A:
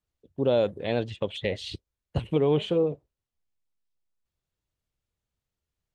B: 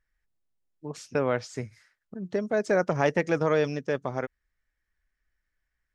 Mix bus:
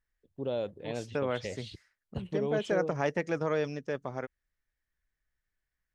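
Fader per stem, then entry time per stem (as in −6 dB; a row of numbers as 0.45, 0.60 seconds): −10.0, −6.0 decibels; 0.00, 0.00 seconds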